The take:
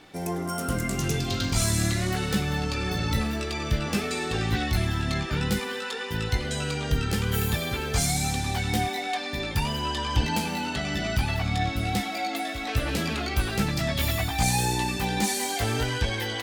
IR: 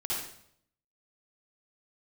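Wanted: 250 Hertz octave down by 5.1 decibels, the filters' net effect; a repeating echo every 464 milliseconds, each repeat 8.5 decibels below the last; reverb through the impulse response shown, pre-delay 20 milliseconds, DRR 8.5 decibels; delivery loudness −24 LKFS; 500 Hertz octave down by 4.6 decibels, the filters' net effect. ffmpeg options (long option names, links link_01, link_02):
-filter_complex "[0:a]equalizer=frequency=250:width_type=o:gain=-6.5,equalizer=frequency=500:width_type=o:gain=-4,aecho=1:1:464|928|1392|1856:0.376|0.143|0.0543|0.0206,asplit=2[link_01][link_02];[1:a]atrim=start_sample=2205,adelay=20[link_03];[link_02][link_03]afir=irnorm=-1:irlink=0,volume=-13.5dB[link_04];[link_01][link_04]amix=inputs=2:normalize=0,volume=3dB"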